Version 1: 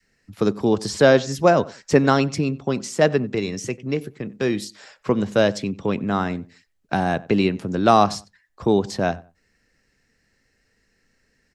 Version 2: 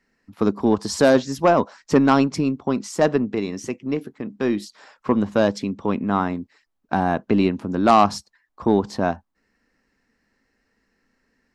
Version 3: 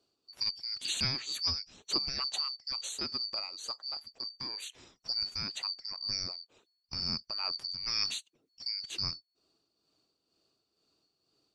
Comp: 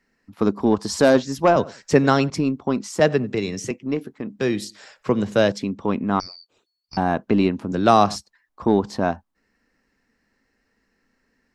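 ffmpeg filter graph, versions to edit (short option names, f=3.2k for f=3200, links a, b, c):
-filter_complex "[0:a]asplit=4[a][b][c][d];[1:a]asplit=6[e][f][g][h][i][j];[e]atrim=end=1.562[k];[a]atrim=start=1.558:end=2.302[l];[f]atrim=start=2.298:end=3.002[m];[b]atrim=start=2.998:end=3.712[n];[g]atrim=start=3.708:end=4.392[o];[c]atrim=start=4.388:end=5.522[p];[h]atrim=start=5.518:end=6.202[q];[2:a]atrim=start=6.198:end=6.972[r];[i]atrim=start=6.968:end=7.722[s];[d]atrim=start=7.718:end=8.162[t];[j]atrim=start=8.158[u];[k][l]acrossfade=d=0.004:c1=hsin:c2=hsin[v];[v][m]acrossfade=d=0.004:c1=hsin:c2=hsin[w];[w][n]acrossfade=d=0.004:c1=hsin:c2=hsin[x];[x][o]acrossfade=d=0.004:c1=hsin:c2=hsin[y];[y][p]acrossfade=d=0.004:c1=hsin:c2=hsin[z];[z][q]acrossfade=d=0.004:c1=hsin:c2=hsin[aa];[aa][r]acrossfade=d=0.004:c1=hsin:c2=hsin[ab];[ab][s]acrossfade=d=0.004:c1=hsin:c2=hsin[ac];[ac][t]acrossfade=d=0.004:c1=hsin:c2=hsin[ad];[ad][u]acrossfade=d=0.004:c1=hsin:c2=hsin"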